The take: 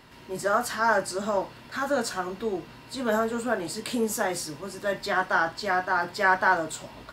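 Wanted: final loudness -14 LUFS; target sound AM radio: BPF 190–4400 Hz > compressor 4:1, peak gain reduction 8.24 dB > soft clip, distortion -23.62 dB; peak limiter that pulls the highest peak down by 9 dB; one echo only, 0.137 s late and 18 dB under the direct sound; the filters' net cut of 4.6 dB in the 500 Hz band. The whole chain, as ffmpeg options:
-af "equalizer=f=500:t=o:g=-6,alimiter=limit=-18dB:level=0:latency=1,highpass=190,lowpass=4.4k,aecho=1:1:137:0.126,acompressor=threshold=-32dB:ratio=4,asoftclip=threshold=-24dB,volume=23dB"

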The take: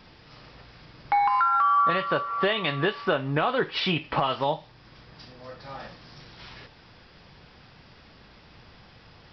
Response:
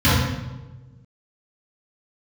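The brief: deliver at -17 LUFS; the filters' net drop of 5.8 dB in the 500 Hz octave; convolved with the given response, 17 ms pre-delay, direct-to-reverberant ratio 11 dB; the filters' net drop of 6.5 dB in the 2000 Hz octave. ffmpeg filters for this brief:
-filter_complex "[0:a]equalizer=f=500:t=o:g=-7,equalizer=f=2k:t=o:g=-8.5,asplit=2[a][b];[1:a]atrim=start_sample=2205,adelay=17[c];[b][c]afir=irnorm=-1:irlink=0,volume=-34dB[d];[a][d]amix=inputs=2:normalize=0,volume=10.5dB"

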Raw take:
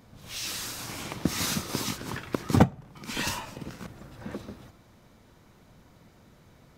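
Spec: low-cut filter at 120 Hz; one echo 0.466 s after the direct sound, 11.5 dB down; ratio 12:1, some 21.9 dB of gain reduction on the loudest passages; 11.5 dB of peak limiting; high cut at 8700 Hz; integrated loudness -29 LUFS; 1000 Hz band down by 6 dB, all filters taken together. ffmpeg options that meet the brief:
-af "highpass=120,lowpass=8.7k,equalizer=f=1k:t=o:g=-8,acompressor=threshold=-37dB:ratio=12,alimiter=level_in=10dB:limit=-24dB:level=0:latency=1,volume=-10dB,aecho=1:1:466:0.266,volume=15.5dB"

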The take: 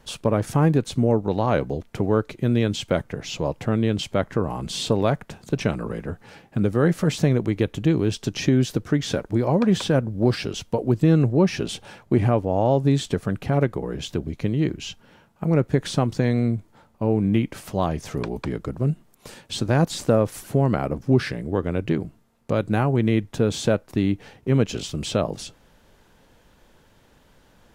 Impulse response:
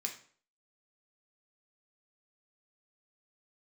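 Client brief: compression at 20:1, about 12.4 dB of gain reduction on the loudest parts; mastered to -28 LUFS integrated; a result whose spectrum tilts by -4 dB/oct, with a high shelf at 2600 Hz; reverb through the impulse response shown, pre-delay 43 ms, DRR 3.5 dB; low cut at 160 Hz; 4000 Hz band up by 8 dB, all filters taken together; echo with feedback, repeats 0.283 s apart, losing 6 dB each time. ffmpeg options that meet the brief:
-filter_complex "[0:a]highpass=160,highshelf=f=2.6k:g=6,equalizer=f=4k:t=o:g=5,acompressor=threshold=-26dB:ratio=20,aecho=1:1:283|566|849|1132|1415|1698:0.501|0.251|0.125|0.0626|0.0313|0.0157,asplit=2[a][b];[1:a]atrim=start_sample=2205,adelay=43[c];[b][c]afir=irnorm=-1:irlink=0,volume=-3.5dB[d];[a][d]amix=inputs=2:normalize=0,volume=1.5dB"

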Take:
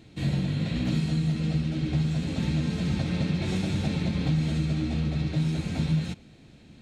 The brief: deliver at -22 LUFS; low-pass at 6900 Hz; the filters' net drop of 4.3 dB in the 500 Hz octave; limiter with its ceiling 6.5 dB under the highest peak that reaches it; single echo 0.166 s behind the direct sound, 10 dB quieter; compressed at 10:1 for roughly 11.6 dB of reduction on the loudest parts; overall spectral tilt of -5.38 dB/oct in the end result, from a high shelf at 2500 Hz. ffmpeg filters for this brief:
-af "lowpass=6.9k,equalizer=f=500:t=o:g=-6.5,highshelf=f=2.5k:g=9,acompressor=threshold=-34dB:ratio=10,alimiter=level_in=8dB:limit=-24dB:level=0:latency=1,volume=-8dB,aecho=1:1:166:0.316,volume=18dB"

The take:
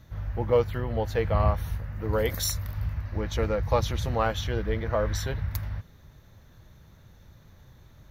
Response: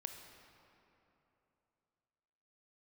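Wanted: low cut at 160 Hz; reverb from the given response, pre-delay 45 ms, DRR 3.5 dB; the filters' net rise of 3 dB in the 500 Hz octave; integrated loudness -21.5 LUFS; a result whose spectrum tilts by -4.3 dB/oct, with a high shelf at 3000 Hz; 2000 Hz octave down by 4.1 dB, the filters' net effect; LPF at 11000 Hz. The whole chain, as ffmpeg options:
-filter_complex "[0:a]highpass=160,lowpass=11k,equalizer=f=500:t=o:g=3.5,equalizer=f=2k:t=o:g=-8.5,highshelf=f=3k:g=8,asplit=2[a][b];[1:a]atrim=start_sample=2205,adelay=45[c];[b][c]afir=irnorm=-1:irlink=0,volume=-0.5dB[d];[a][d]amix=inputs=2:normalize=0,volume=4.5dB"

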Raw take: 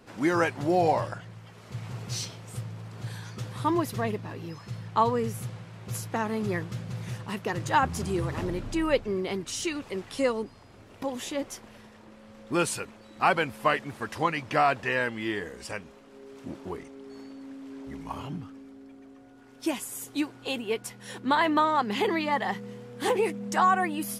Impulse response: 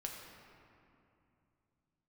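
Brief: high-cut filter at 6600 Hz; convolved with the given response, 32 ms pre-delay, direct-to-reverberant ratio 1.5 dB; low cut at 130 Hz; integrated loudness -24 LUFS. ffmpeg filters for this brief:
-filter_complex "[0:a]highpass=130,lowpass=6.6k,asplit=2[a][b];[1:a]atrim=start_sample=2205,adelay=32[c];[b][c]afir=irnorm=-1:irlink=0,volume=-0.5dB[d];[a][d]amix=inputs=2:normalize=0,volume=3dB"

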